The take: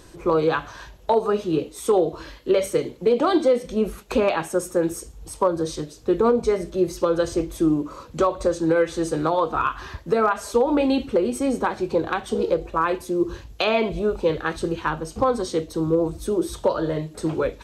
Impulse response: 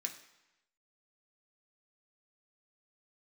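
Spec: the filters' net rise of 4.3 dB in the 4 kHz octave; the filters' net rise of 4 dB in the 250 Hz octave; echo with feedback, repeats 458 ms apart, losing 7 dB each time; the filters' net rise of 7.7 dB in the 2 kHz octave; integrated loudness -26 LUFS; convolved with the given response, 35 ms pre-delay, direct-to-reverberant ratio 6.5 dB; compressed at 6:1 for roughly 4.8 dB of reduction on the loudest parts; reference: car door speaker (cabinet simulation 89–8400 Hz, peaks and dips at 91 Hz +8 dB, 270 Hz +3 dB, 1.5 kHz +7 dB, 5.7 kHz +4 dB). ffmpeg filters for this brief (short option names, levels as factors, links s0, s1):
-filter_complex "[0:a]equalizer=f=250:t=o:g=3.5,equalizer=f=2000:t=o:g=3.5,equalizer=f=4000:t=o:g=3.5,acompressor=threshold=0.126:ratio=6,aecho=1:1:458|916|1374|1832|2290:0.447|0.201|0.0905|0.0407|0.0183,asplit=2[s0][s1];[1:a]atrim=start_sample=2205,adelay=35[s2];[s1][s2]afir=irnorm=-1:irlink=0,volume=0.531[s3];[s0][s3]amix=inputs=2:normalize=0,highpass=89,equalizer=f=91:t=q:w=4:g=8,equalizer=f=270:t=q:w=4:g=3,equalizer=f=1500:t=q:w=4:g=7,equalizer=f=5700:t=q:w=4:g=4,lowpass=f=8400:w=0.5412,lowpass=f=8400:w=1.3066,volume=0.668"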